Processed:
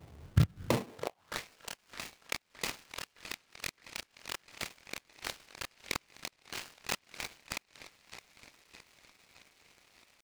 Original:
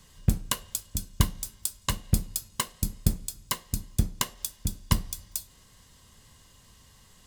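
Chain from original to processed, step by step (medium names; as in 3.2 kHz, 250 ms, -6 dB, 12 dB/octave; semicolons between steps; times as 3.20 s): peaking EQ 2.8 kHz -7 dB 1.6 oct; inverted gate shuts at -11 dBFS, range -29 dB; chorus voices 2, 0.42 Hz, delay 26 ms, depth 4.4 ms; tempo 0.71×; in parallel at -3.5 dB: saturation -26.5 dBFS, distortion -9 dB; on the sum: sample-rate reducer 1.5 kHz, jitter 0%; high-pass sweep 86 Hz -> 2.5 kHz, 0.60–1.46 s; on a send: band-passed feedback delay 615 ms, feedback 57%, band-pass 2.1 kHz, level -11 dB; on the sum: delay time shaken by noise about 1.8 kHz, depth 0.067 ms; trim +1 dB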